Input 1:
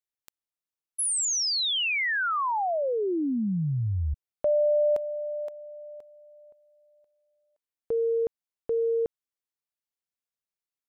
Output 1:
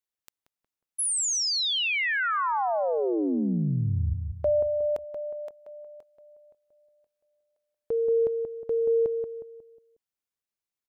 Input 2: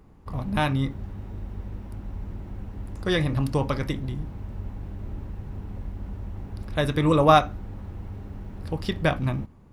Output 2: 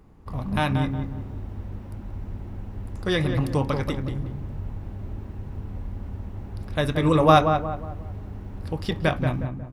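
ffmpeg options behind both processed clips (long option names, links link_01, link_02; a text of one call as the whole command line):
ffmpeg -i in.wav -filter_complex "[0:a]asplit=2[link_01][link_02];[link_02]adelay=181,lowpass=frequency=1400:poles=1,volume=-5.5dB,asplit=2[link_03][link_04];[link_04]adelay=181,lowpass=frequency=1400:poles=1,volume=0.41,asplit=2[link_05][link_06];[link_06]adelay=181,lowpass=frequency=1400:poles=1,volume=0.41,asplit=2[link_07][link_08];[link_08]adelay=181,lowpass=frequency=1400:poles=1,volume=0.41,asplit=2[link_09][link_10];[link_10]adelay=181,lowpass=frequency=1400:poles=1,volume=0.41[link_11];[link_01][link_03][link_05][link_07][link_09][link_11]amix=inputs=6:normalize=0" out.wav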